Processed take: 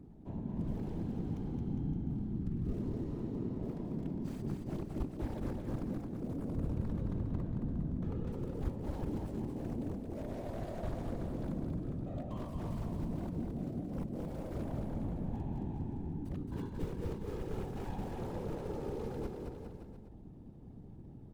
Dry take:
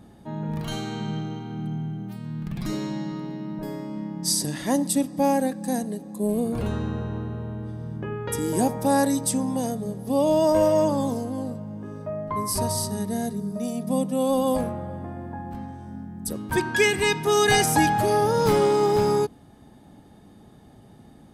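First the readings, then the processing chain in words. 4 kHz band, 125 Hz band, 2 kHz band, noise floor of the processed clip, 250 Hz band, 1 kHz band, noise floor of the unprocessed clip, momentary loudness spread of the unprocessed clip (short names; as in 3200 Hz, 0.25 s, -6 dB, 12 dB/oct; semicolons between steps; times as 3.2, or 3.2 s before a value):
-29.5 dB, -7.0 dB, -28.5 dB, -51 dBFS, -12.0 dB, -23.5 dB, -50 dBFS, 14 LU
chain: median filter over 25 samples; reverse; compressor 8:1, threshold -31 dBFS, peak gain reduction 15 dB; reverse; flange 0.61 Hz, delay 0.5 ms, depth 4.3 ms, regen -88%; pre-emphasis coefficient 0.8; wrapped overs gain 44 dB; tilt -4.5 dB/oct; whisperiser; on a send: bouncing-ball echo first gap 0.22 s, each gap 0.85×, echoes 5; on the sum: gain +3 dB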